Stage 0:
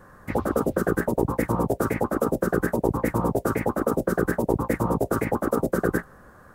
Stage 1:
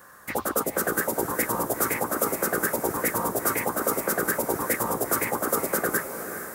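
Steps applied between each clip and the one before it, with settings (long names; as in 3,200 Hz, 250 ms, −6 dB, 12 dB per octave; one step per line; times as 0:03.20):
spectral tilt +4 dB per octave
on a send: feedback delay with all-pass diffusion 453 ms, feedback 55%, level −9 dB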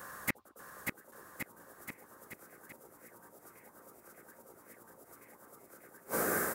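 gate with flip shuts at −20 dBFS, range −35 dB
bouncing-ball delay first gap 590 ms, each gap 0.9×, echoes 5
level +2 dB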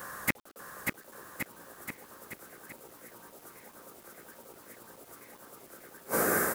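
bit reduction 10 bits
level +5 dB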